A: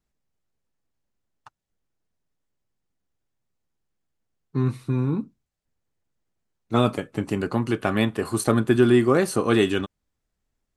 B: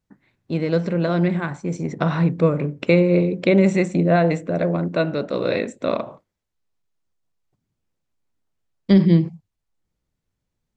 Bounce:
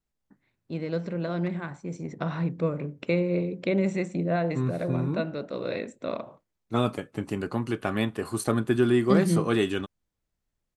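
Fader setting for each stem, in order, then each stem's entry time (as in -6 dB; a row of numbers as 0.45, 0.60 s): -5.0, -9.5 dB; 0.00, 0.20 s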